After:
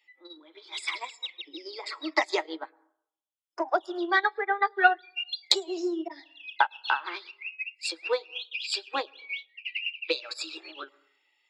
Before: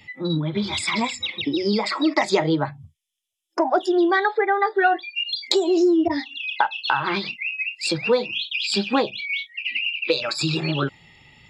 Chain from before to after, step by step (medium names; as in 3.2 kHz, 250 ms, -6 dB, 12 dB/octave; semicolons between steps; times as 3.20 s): steep high-pass 290 Hz 96 dB/octave; tilt shelf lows -5 dB, about 650 Hz; plate-style reverb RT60 0.71 s, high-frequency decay 0.25×, pre-delay 95 ms, DRR 17.5 dB; upward expansion 2.5:1, over -27 dBFS; trim -1 dB